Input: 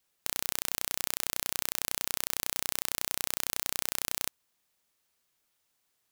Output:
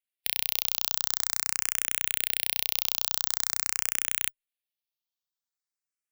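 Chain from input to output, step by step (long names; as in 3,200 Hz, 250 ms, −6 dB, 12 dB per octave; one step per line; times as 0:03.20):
spectral dynamics exaggerated over time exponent 1.5
parametric band 3,500 Hz +10 dB 2.4 octaves
formants moved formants −5 semitones
high-shelf EQ 6,100 Hz +11.5 dB
frequency shifter mixed with the dry sound +0.46 Hz
level −3 dB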